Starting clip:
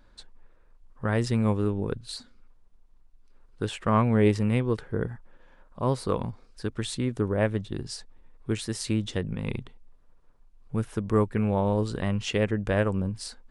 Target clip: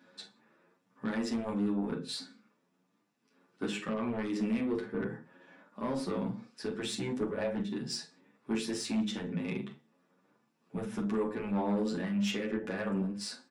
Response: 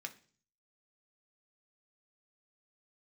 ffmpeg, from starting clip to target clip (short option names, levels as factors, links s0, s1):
-filter_complex "[0:a]asplit=2[s0][s1];[s1]acompressor=threshold=0.0178:ratio=6,volume=1.33[s2];[s0][s2]amix=inputs=2:normalize=0,highpass=f=170:w=0.5412,highpass=f=170:w=1.3066[s3];[1:a]atrim=start_sample=2205,afade=t=out:st=0.24:d=0.01,atrim=end_sample=11025[s4];[s3][s4]afir=irnorm=-1:irlink=0,alimiter=limit=0.1:level=0:latency=1:release=146,lowshelf=f=430:g=7,asplit=2[s5][s6];[s6]adelay=44,volume=0.282[s7];[s5][s7]amix=inputs=2:normalize=0,asoftclip=type=tanh:threshold=0.0668,asplit=2[s8][s9];[s9]adelay=9.1,afreqshift=1.5[s10];[s8][s10]amix=inputs=2:normalize=1"